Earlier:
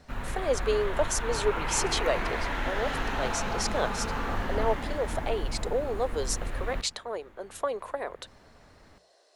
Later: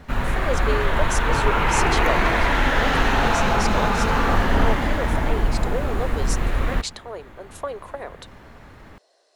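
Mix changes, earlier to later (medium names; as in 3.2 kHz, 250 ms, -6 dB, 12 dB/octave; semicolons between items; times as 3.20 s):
background +11.5 dB; master: remove hum notches 60/120/180 Hz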